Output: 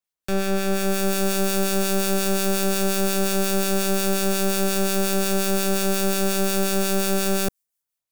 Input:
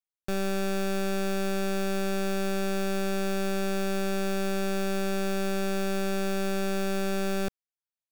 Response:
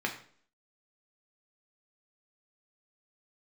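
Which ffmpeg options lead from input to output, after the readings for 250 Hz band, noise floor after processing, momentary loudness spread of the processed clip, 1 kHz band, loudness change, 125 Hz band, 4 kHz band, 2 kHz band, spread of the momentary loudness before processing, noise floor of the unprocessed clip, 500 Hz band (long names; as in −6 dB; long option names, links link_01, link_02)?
+5.5 dB, −85 dBFS, 2 LU, +6.0 dB, +7.5 dB, can't be measured, +10.0 dB, +5.5 dB, 0 LU, below −85 dBFS, +5.5 dB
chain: -filter_complex "[0:a]acrossover=split=430|1500|6600[link_01][link_02][link_03][link_04];[link_04]dynaudnorm=framelen=630:gausssize=3:maxgain=14dB[link_05];[link_01][link_02][link_03][link_05]amix=inputs=4:normalize=0,acrossover=split=1300[link_06][link_07];[link_06]aeval=exprs='val(0)*(1-0.5/2+0.5/2*cos(2*PI*5.6*n/s))':channel_layout=same[link_08];[link_07]aeval=exprs='val(0)*(1-0.5/2-0.5/2*cos(2*PI*5.6*n/s))':channel_layout=same[link_09];[link_08][link_09]amix=inputs=2:normalize=0,volume=21dB,asoftclip=hard,volume=-21dB,volume=8dB"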